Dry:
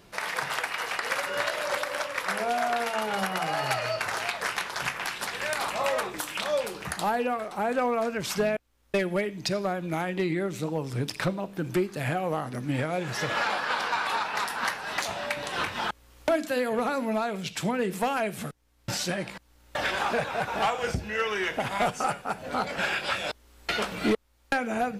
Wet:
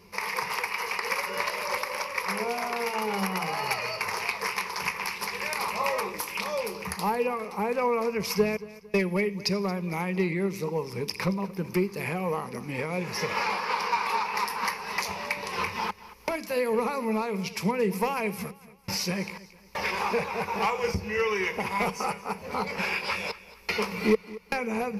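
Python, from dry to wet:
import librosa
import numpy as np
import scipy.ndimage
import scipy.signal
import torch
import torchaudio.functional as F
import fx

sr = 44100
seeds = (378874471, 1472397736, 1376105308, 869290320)

y = fx.ripple_eq(x, sr, per_octave=0.84, db=13)
y = fx.echo_feedback(y, sr, ms=226, feedback_pct=38, wet_db=-18.0)
y = y * librosa.db_to_amplitude(-2.0)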